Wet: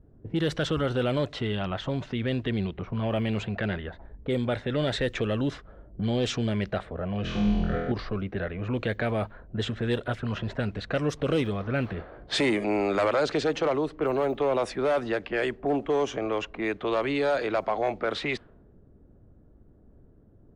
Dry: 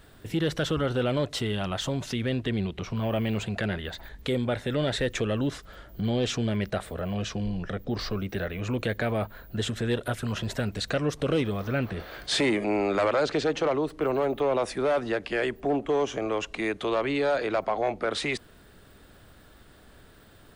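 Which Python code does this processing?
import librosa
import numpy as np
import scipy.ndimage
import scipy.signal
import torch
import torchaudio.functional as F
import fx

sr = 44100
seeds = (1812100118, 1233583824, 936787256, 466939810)

y = fx.env_lowpass(x, sr, base_hz=330.0, full_db=-21.5)
y = fx.room_flutter(y, sr, wall_m=4.1, rt60_s=1.2, at=(7.22, 7.92))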